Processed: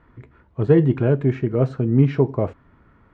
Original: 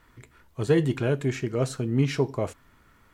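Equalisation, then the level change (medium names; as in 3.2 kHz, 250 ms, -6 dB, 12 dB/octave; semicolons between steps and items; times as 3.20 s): high-pass 99 Hz 6 dB/octave; Bessel low-pass 1.8 kHz, order 2; tilt EQ -2 dB/octave; +4.0 dB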